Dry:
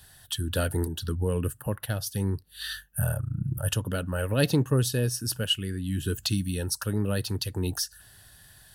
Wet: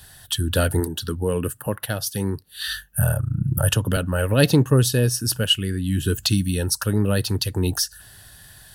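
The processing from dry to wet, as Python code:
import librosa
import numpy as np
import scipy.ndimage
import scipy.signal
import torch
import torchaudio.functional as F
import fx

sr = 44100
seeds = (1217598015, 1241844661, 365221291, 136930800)

y = fx.highpass(x, sr, hz=180.0, slope=6, at=(0.8, 2.68))
y = fx.band_squash(y, sr, depth_pct=100, at=(3.57, 3.97))
y = F.gain(torch.from_numpy(y), 7.0).numpy()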